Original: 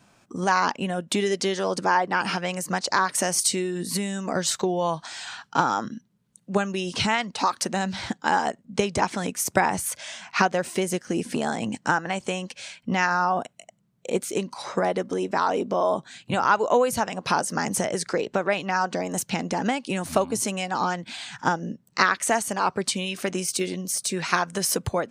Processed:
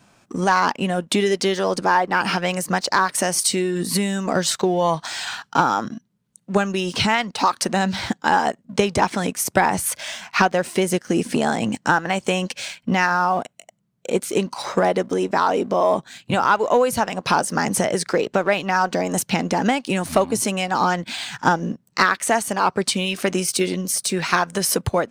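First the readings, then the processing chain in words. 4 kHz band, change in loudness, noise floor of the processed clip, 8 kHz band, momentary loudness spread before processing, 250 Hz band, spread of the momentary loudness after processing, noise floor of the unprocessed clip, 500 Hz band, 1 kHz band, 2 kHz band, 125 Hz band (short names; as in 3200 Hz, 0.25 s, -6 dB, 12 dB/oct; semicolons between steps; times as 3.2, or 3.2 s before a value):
+4.5 dB, +4.5 dB, -64 dBFS, +3.0 dB, 8 LU, +5.5 dB, 6 LU, -64 dBFS, +5.0 dB, +4.5 dB, +4.5 dB, +5.5 dB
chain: dynamic EQ 6900 Hz, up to -4 dB, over -43 dBFS, Q 2.1; in parallel at +0.5 dB: vocal rider 0.5 s; on the sum: sample leveller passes 1; gain -5 dB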